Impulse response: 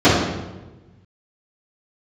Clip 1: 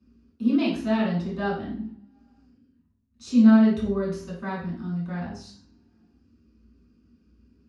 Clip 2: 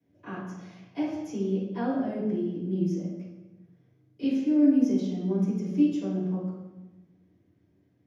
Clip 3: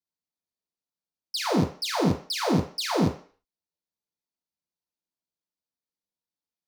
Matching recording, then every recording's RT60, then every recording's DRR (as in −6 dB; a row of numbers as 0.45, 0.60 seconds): 2; 0.70, 1.2, 0.40 seconds; −8.0, −15.5, −4.0 decibels